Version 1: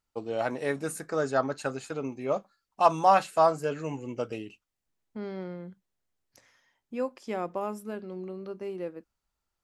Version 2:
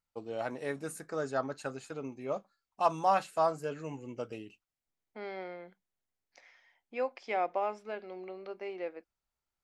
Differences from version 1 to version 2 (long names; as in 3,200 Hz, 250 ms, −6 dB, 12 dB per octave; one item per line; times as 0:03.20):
first voice −6.5 dB
second voice: add loudspeaker in its box 470–5,300 Hz, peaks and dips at 730 Hz +7 dB, 1,100 Hz −3 dB, 2,200 Hz +9 dB